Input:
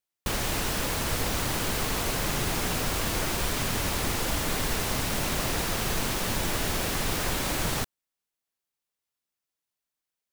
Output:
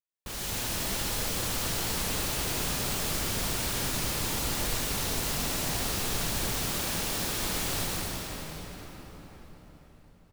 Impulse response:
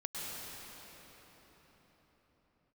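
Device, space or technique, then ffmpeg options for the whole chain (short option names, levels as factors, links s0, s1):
cathedral: -filter_complex "[0:a]asettb=1/sr,asplit=3[s0][s1][s2];[s0]atrim=end=6.534[s3];[s1]atrim=start=6.53:end=7.1,asetpts=PTS-STARTPTS,afade=t=in:d=0.004:c=qsin,afade=t=out:st=0.566:d=0.004:c=qsin,highpass=120[s4];[s2]atrim=start=7.096[s5];[s3][s4]acrossfade=d=0.004:c1=hsin:c2=qsin[s6];[s6][s5]acrossfade=d=0.004:c1=qsin:c2=hsin,aecho=1:1:508|1016|1524|2032|2540:0.106|0.0593|0.0332|0.0186|0.0104[s7];[1:a]atrim=start_sample=2205[s8];[s7][s8]afir=irnorm=-1:irlink=0,adynamicequalizer=threshold=0.00501:dfrequency=3000:dqfactor=0.7:tfrequency=3000:tqfactor=0.7:attack=5:release=100:ratio=0.375:range=3.5:mode=boostabove:tftype=highshelf,volume=0.422"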